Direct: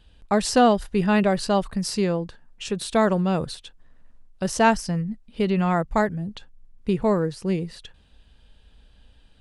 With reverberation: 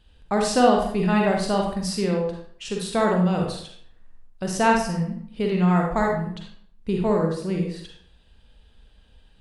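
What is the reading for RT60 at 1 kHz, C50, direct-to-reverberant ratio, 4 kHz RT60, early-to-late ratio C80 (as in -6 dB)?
0.60 s, 2.0 dB, 0.0 dB, 0.45 s, 7.0 dB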